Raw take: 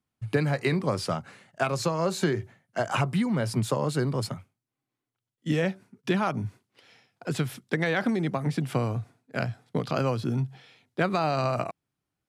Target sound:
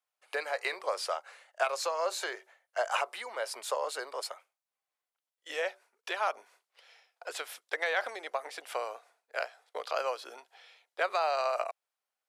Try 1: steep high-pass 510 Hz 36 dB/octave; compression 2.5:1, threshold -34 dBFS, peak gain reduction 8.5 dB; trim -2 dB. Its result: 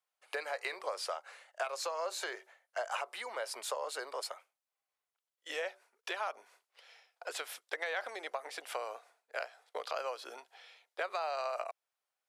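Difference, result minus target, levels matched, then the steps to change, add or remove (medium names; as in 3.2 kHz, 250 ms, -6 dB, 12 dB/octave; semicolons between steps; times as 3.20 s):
compression: peak gain reduction +8.5 dB
remove: compression 2.5:1, threshold -34 dBFS, peak gain reduction 8.5 dB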